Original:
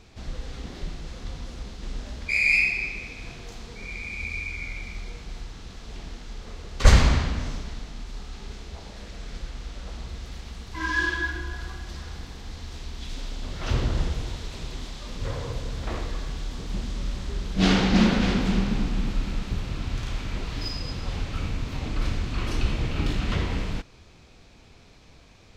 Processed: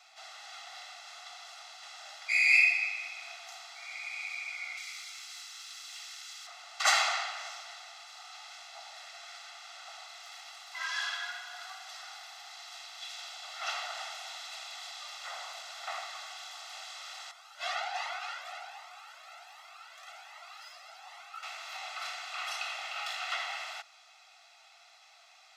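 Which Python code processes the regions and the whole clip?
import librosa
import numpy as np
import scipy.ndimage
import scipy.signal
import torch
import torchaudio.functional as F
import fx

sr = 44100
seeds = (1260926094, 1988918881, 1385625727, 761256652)

y = fx.chain(x, sr, fx.highpass(hz=1300.0, slope=12),
    fx.high_shelf(hz=5100.0, db=12.0), at=(4.77, 6.47))
y = fx.chain(y, sr, fx.peak_eq(hz=4200.0, db=-7.0, octaves=2.6),
    fx.comb_cascade(direction='rising', hz=1.3), at=(17.31, 21.43))
y = scipy.signal.sosfilt(scipy.signal.butter(12, 690.0, 'highpass', fs=sr, output='sos'), y)
y = y + 0.77 * np.pad(y, (int(1.5 * sr / 1000.0), 0))[:len(y)]
y = y * 10.0 ** (-2.0 / 20.0)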